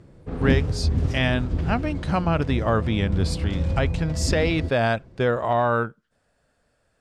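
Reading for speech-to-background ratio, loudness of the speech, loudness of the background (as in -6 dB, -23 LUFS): 2.0 dB, -25.0 LUFS, -27.0 LUFS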